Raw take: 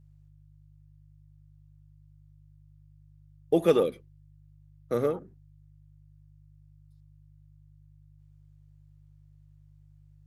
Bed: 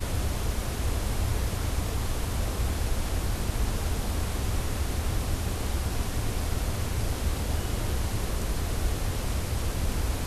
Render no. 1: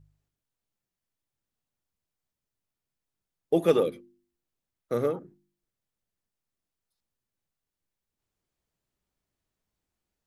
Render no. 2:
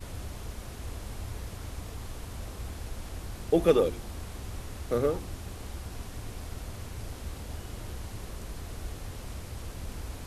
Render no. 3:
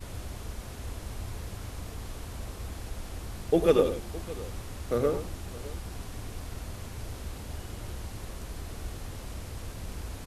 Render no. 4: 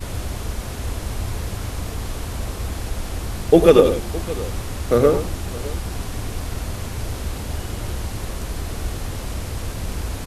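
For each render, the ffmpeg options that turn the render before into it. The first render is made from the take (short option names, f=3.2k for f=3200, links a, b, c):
-af "bandreject=f=50:t=h:w=4,bandreject=f=100:t=h:w=4,bandreject=f=150:t=h:w=4,bandreject=f=200:t=h:w=4,bandreject=f=250:t=h:w=4,bandreject=f=300:t=h:w=4,bandreject=f=350:t=h:w=4"
-filter_complex "[1:a]volume=-10.5dB[a];[0:a][a]amix=inputs=2:normalize=0"
-af "aecho=1:1:97|613:0.335|0.119"
-af "volume=11.5dB,alimiter=limit=-1dB:level=0:latency=1"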